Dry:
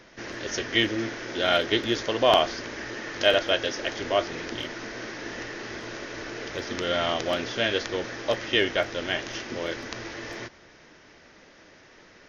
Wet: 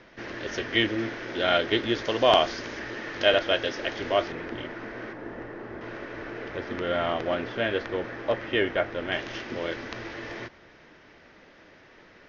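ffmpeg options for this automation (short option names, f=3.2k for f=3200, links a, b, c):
-af "asetnsamples=n=441:p=0,asendcmd='2.05 lowpass f 6100;2.79 lowpass f 3900;4.32 lowpass f 2000;5.13 lowpass f 1200;5.81 lowpass f 2100;9.12 lowpass f 3600',lowpass=3.6k"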